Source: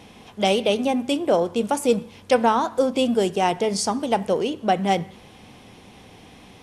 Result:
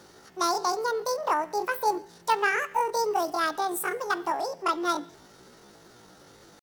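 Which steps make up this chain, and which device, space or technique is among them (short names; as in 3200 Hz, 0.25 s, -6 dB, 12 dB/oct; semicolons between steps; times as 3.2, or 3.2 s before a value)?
chipmunk voice (pitch shift +10 st); gain -6 dB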